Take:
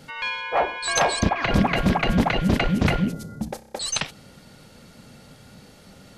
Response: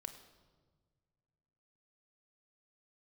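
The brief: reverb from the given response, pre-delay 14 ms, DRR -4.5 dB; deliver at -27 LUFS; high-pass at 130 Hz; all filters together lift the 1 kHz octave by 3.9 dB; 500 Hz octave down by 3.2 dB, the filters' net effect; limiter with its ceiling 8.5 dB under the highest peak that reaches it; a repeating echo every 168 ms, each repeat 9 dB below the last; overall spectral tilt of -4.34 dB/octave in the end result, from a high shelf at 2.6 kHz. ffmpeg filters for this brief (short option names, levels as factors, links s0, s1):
-filter_complex "[0:a]highpass=130,equalizer=f=500:t=o:g=-8,equalizer=f=1000:t=o:g=9,highshelf=f=2600:g=-6,alimiter=limit=0.178:level=0:latency=1,aecho=1:1:168|336|504|672:0.355|0.124|0.0435|0.0152,asplit=2[s0][s1];[1:a]atrim=start_sample=2205,adelay=14[s2];[s1][s2]afir=irnorm=-1:irlink=0,volume=2.66[s3];[s0][s3]amix=inputs=2:normalize=0,volume=0.447"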